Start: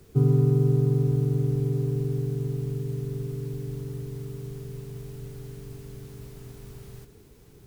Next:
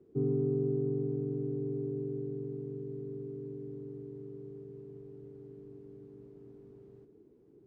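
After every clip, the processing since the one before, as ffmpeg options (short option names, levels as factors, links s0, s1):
-af "bandpass=f=330:t=q:w=2.7:csg=0"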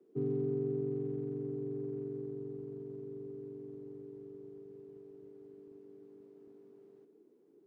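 -filter_complex "[0:a]lowshelf=f=140:g=-6,acrossover=split=180|450[s0][s1][s2];[s0]aeval=exprs='sgn(val(0))*max(abs(val(0))-0.00119,0)':c=same[s3];[s3][s1][s2]amix=inputs=3:normalize=0,volume=0.794"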